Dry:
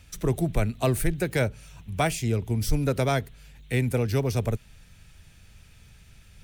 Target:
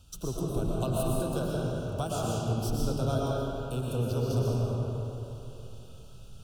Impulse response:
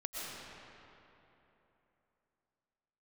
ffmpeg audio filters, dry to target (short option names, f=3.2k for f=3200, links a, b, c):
-filter_complex "[0:a]acompressor=threshold=-31dB:ratio=2,asuperstop=centerf=2000:order=8:qfactor=1.6[a];[1:a]atrim=start_sample=2205[b];[a][b]afir=irnorm=-1:irlink=0"